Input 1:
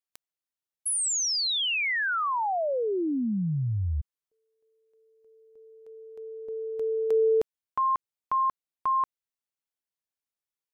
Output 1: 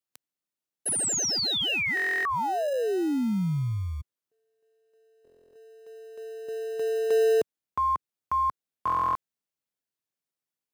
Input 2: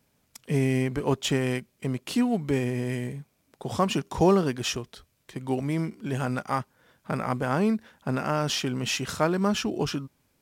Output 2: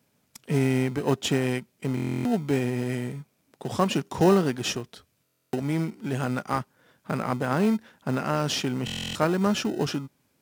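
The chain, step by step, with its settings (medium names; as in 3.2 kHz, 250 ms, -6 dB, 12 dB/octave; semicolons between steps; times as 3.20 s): in parallel at -11.5 dB: sample-and-hold 39×; on the sum: high-pass 110 Hz 12 dB/octave; buffer glitch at 1.95/5.23/8.85 s, samples 1024, times 12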